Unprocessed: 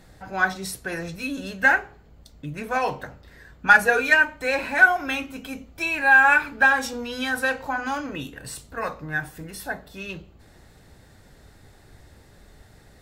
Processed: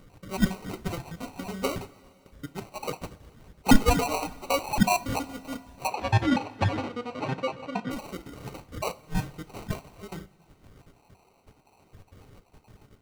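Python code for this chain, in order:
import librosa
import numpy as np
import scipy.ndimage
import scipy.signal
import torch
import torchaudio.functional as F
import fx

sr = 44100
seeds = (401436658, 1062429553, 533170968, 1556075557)

y = fx.spec_dropout(x, sr, seeds[0], share_pct=53)
y = fx.sample_hold(y, sr, seeds[1], rate_hz=1700.0, jitter_pct=0)
y = fx.bandpass_edges(y, sr, low_hz=160.0, high_hz=fx.line((5.87, 4000.0), (7.9, 3000.0)), at=(5.87, 7.9), fade=0.02)
y = fx.rev_double_slope(y, sr, seeds[2], early_s=0.23, late_s=3.1, knee_db=-21, drr_db=9.5)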